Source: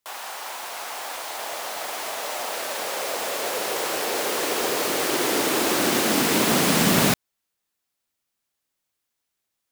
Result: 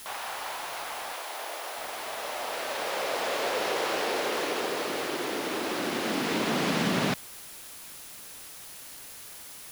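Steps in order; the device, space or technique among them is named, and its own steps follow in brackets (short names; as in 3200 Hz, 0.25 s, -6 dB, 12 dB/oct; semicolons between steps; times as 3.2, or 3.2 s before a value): medium wave at night (BPF 100–4400 Hz; compressor, threshold -23 dBFS, peak gain reduction 7.5 dB; tremolo 0.28 Hz, depth 44%; whine 10000 Hz -51 dBFS; white noise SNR 13 dB); 1.14–1.78 HPF 270 Hz 24 dB/oct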